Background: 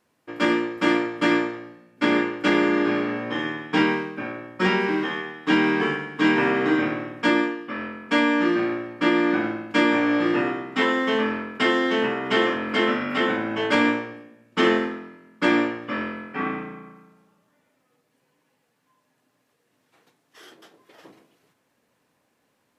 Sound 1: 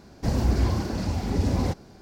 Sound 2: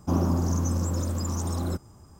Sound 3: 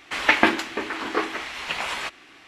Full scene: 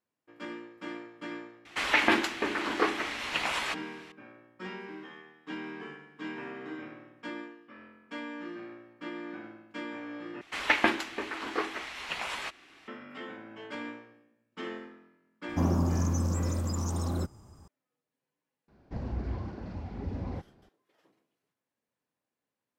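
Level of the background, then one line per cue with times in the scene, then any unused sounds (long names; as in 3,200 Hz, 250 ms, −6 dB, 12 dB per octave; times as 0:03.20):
background −20 dB
0:01.65: mix in 3 −9.5 dB + boost into a limiter +7 dB
0:10.41: overwrite with 3 −7 dB
0:15.49: mix in 2 −2.5 dB + high-shelf EQ 11,000 Hz −6 dB
0:18.68: mix in 1 −12 dB + low-pass filter 2,500 Hz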